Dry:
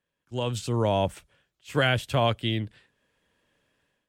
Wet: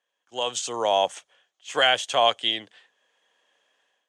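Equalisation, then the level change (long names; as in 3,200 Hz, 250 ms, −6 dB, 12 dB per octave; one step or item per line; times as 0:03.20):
dynamic equaliser 7,300 Hz, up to +6 dB, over −50 dBFS, Q 0.98
loudspeaker in its box 480–9,800 Hz, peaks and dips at 490 Hz +3 dB, 750 Hz +9 dB, 1,100 Hz +4 dB, 1,800 Hz +4 dB, 3,200 Hz +8 dB, 6,400 Hz +9 dB
0.0 dB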